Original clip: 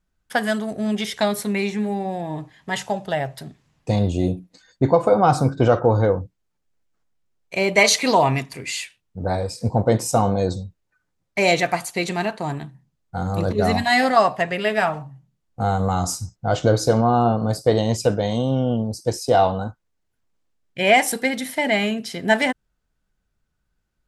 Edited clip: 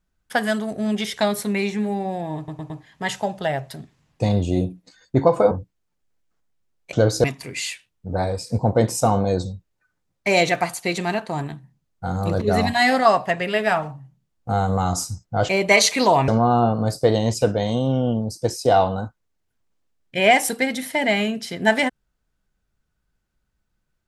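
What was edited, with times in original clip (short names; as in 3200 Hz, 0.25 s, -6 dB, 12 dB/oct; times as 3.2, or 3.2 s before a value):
2.37 stutter 0.11 s, 4 plays
5.18–6.14 cut
7.56–8.35 swap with 16.6–16.91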